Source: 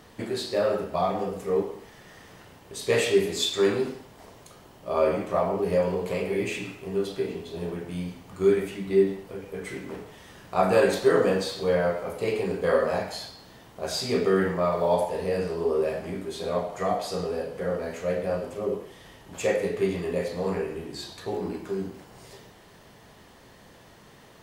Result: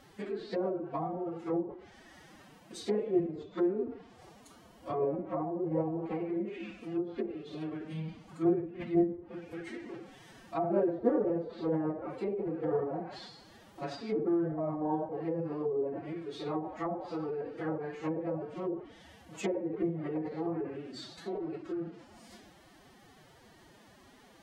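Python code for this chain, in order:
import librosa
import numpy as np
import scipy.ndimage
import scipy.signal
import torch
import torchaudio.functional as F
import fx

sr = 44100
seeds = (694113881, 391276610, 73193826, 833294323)

y = fx.env_lowpass_down(x, sr, base_hz=570.0, full_db=-22.5)
y = fx.pitch_keep_formants(y, sr, semitones=10.0)
y = y * 10.0 ** (-5.5 / 20.0)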